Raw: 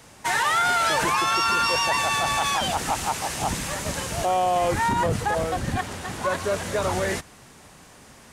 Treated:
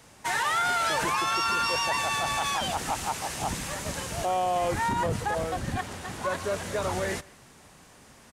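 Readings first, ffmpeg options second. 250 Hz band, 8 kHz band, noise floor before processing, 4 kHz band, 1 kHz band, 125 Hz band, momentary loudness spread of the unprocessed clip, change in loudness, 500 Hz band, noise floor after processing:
-4.5 dB, -4.5 dB, -49 dBFS, -4.5 dB, -4.5 dB, -4.5 dB, 8 LU, -4.5 dB, -4.5 dB, -54 dBFS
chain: -filter_complex "[0:a]asplit=2[a][b];[b]adelay=170,highpass=300,lowpass=3.4k,asoftclip=type=hard:threshold=-20dB,volume=-23dB[c];[a][c]amix=inputs=2:normalize=0,volume=-4.5dB"

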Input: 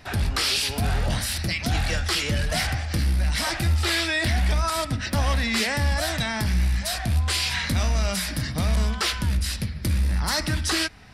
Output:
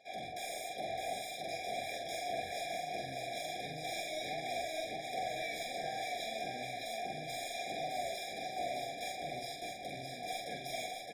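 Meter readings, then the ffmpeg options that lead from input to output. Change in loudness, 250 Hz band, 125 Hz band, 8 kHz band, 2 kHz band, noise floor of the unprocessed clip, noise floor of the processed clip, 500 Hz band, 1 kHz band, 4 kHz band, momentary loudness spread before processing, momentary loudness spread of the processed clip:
-15.5 dB, -20.5 dB, -30.5 dB, -17.0 dB, -15.5 dB, -33 dBFS, -46 dBFS, -6.5 dB, -6.5 dB, -16.5 dB, 4 LU, 3 LU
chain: -filter_complex "[0:a]lowpass=8.7k,areverse,acompressor=mode=upward:threshold=-34dB:ratio=2.5,areverse,aeval=exprs='abs(val(0))':c=same,asplit=3[a][b][c];[a]bandpass=f=730:t=q:w=8,volume=0dB[d];[b]bandpass=f=1.09k:t=q:w=8,volume=-6dB[e];[c]bandpass=f=2.44k:t=q:w=8,volume=-9dB[f];[d][e][f]amix=inputs=3:normalize=0,crystalizer=i=4:c=0,asoftclip=type=tanh:threshold=-37dB,asplit=2[g][h];[h]adelay=45,volume=-4dB[i];[g][i]amix=inputs=2:normalize=0,asplit=2[j][k];[k]aecho=0:1:612|1224|1836|2448|3060|3672:0.631|0.315|0.158|0.0789|0.0394|0.0197[l];[j][l]amix=inputs=2:normalize=0,afftfilt=real='re*eq(mod(floor(b*sr/1024/810),2),0)':imag='im*eq(mod(floor(b*sr/1024/810),2),0)':win_size=1024:overlap=0.75,volume=3dB"

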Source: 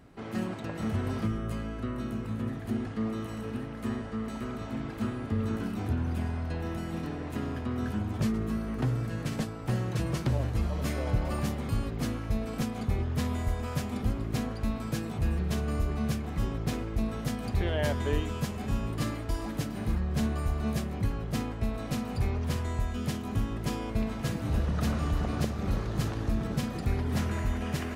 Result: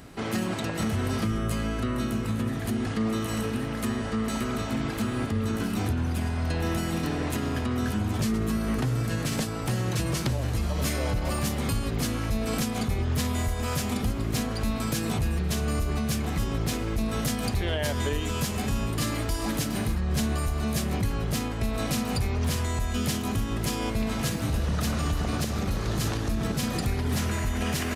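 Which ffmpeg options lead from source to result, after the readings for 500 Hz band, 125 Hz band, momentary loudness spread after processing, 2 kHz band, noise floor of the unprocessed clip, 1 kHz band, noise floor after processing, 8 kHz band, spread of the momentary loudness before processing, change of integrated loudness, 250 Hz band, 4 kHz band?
+4.0 dB, +2.5 dB, 2 LU, +6.5 dB, -38 dBFS, +5.0 dB, -31 dBFS, +11.5 dB, 5 LU, +4.0 dB, +3.5 dB, +9.0 dB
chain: -af "alimiter=level_in=3.5dB:limit=-24dB:level=0:latency=1:release=170,volume=-3.5dB,aresample=32000,aresample=44100,highshelf=f=2.9k:g=10.5,volume=8dB"

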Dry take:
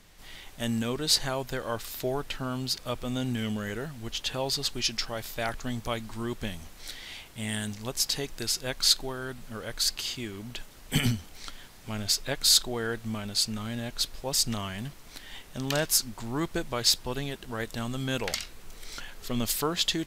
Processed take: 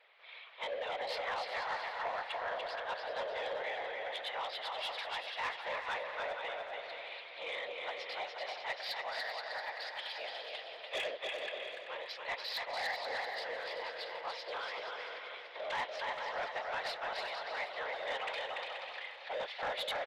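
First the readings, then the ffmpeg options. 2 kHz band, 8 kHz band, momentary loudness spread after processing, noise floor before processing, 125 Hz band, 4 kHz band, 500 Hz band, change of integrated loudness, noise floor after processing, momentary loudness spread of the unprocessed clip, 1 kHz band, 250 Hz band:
-0.5 dB, -29.5 dB, 6 LU, -49 dBFS, under -30 dB, -12.5 dB, -4.5 dB, -10.0 dB, -50 dBFS, 17 LU, +0.5 dB, -29.5 dB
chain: -filter_complex "[0:a]highpass=f=210:t=q:w=0.5412,highpass=f=210:t=q:w=1.307,lowpass=f=3.4k:t=q:w=0.5176,lowpass=f=3.4k:t=q:w=0.7071,lowpass=f=3.4k:t=q:w=1.932,afreqshift=320,afftfilt=real='hypot(re,im)*cos(2*PI*random(0))':imag='hypot(re,im)*sin(2*PI*random(1))':win_size=512:overlap=0.75,asplit=2[a][b];[b]aecho=0:1:290|478.5|601|680.7|732.4:0.631|0.398|0.251|0.158|0.1[c];[a][c]amix=inputs=2:normalize=0,asoftclip=type=tanh:threshold=-32.5dB,equalizer=f=2k:w=2.1:g=5.5,asplit=2[d][e];[e]aecho=0:1:385|770|1155|1540|1925:0.282|0.138|0.0677|0.0332|0.0162[f];[d][f]amix=inputs=2:normalize=0"

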